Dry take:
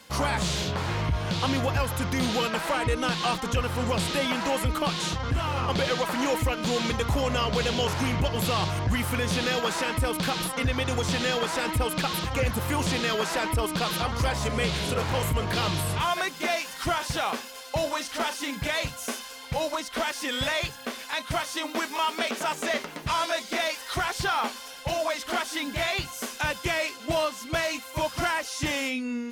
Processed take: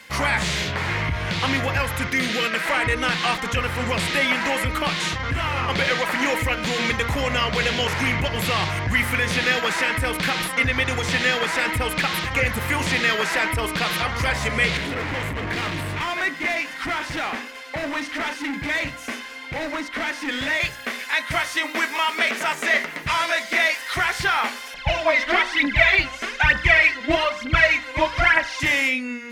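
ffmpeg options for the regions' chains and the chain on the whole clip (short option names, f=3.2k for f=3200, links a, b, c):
-filter_complex "[0:a]asettb=1/sr,asplit=3[a][b][c];[a]atrim=end=2.074[d];[b]atrim=start=2.07:end=2.66,asetpts=PTS-STARTPTS,afade=t=in:d=0.004:c=qsin,afade=t=out:st=0.586:d=0.004:c=qsin,highpass=160,equalizer=f=870:w=4.3:g=-13.5[e];[c]atrim=start=2.656[f];[d][e]acrossfade=d=0.004:c1=hsin:c2=qsin[g];[g][f]acrossfade=d=0.004:c1=qsin:c2=hsin,asettb=1/sr,asplit=3[h][i][j];[h]atrim=end=14.774[k];[i]atrim=start=14.77:end=20.6,asetpts=PTS-STARTPTS,afade=t=in:d=0.004:c=qsin,afade=t=out:st=5.826:d=0.004:c=qsin,lowpass=f=3.4k:p=1,equalizer=f=290:t=o:w=0.37:g=12,asoftclip=type=hard:threshold=-27.5dB[l];[j]atrim=start=20.596[m];[k][l]acrossfade=d=0.004:c1=hsin:c2=qsin[n];[n][m]acrossfade=d=0.004:c1=qsin:c2=hsin,asettb=1/sr,asplit=3[o][p][q];[o]atrim=end=24.744[r];[p]atrim=start=24.74:end=28.6,asetpts=PTS-STARTPTS,afade=t=in:d=0.004:c=qsin,afade=t=out:st=3.856:d=0.004:c=qsin,lowpass=4.2k,lowshelf=f=91:g=8.5,aphaser=in_gain=1:out_gain=1:delay=4.1:decay=0.72:speed=1.1:type=triangular[s];[q]atrim=start=28.596[t];[r][s]acrossfade=d=0.004:c1=hsin:c2=qsin[u];[u][t]acrossfade=d=0.004:c1=qsin:c2=hsin,equalizer=f=2k:w=1.7:g=12.5,bandreject=f=59.93:t=h:w=4,bandreject=f=119.86:t=h:w=4,bandreject=f=179.79:t=h:w=4,bandreject=f=239.72:t=h:w=4,bandreject=f=299.65:t=h:w=4,bandreject=f=359.58:t=h:w=4,bandreject=f=419.51:t=h:w=4,bandreject=f=479.44:t=h:w=4,bandreject=f=539.37:t=h:w=4,bandreject=f=599.3:t=h:w=4,bandreject=f=659.23:t=h:w=4,bandreject=f=719.16:t=h:w=4,bandreject=f=779.09:t=h:w=4,bandreject=f=839.02:t=h:w=4,bandreject=f=898.95:t=h:w=4,bandreject=f=958.88:t=h:w=4,bandreject=f=1.01881k:t=h:w=4,bandreject=f=1.07874k:t=h:w=4,bandreject=f=1.13867k:t=h:w=4,bandreject=f=1.1986k:t=h:w=4,bandreject=f=1.25853k:t=h:w=4,bandreject=f=1.31846k:t=h:w=4,bandreject=f=1.37839k:t=h:w=4,bandreject=f=1.43832k:t=h:w=4,bandreject=f=1.49825k:t=h:w=4,bandreject=f=1.55818k:t=h:w=4,bandreject=f=1.61811k:t=h:w=4,bandreject=f=1.67804k:t=h:w=4,bandreject=f=1.73797k:t=h:w=4,bandreject=f=1.7979k:t=h:w=4,bandreject=f=1.85783k:t=h:w=4,bandreject=f=1.91776k:t=h:w=4,bandreject=f=1.97769k:t=h:w=4,bandreject=f=2.03762k:t=h:w=4,volume=1.5dB"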